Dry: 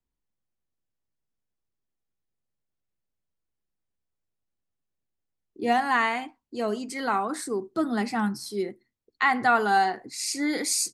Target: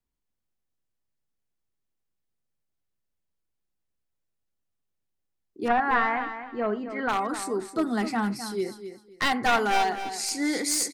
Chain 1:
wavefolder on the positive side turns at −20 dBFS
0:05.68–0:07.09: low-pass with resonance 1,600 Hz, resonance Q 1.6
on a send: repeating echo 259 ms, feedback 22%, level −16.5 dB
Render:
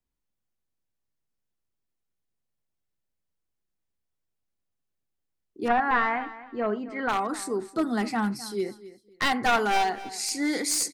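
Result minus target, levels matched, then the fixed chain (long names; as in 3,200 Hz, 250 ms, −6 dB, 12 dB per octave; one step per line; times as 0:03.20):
echo-to-direct −6 dB
wavefolder on the positive side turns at −20 dBFS
0:05.68–0:07.09: low-pass with resonance 1,600 Hz, resonance Q 1.6
on a send: repeating echo 259 ms, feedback 22%, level −10.5 dB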